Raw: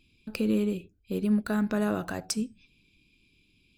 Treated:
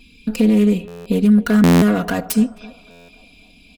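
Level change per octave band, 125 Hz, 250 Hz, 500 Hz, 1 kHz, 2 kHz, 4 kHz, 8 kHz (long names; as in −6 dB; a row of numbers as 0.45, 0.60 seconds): +16.0, +14.0, +11.0, +12.0, +11.5, +10.0, +7.5 decibels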